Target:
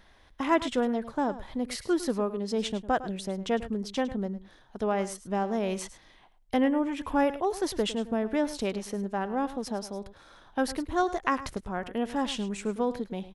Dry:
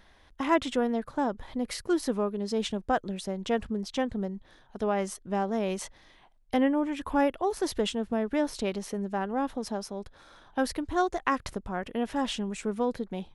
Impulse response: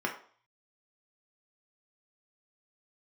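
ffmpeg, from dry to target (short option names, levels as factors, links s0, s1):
-af "aecho=1:1:105:0.188"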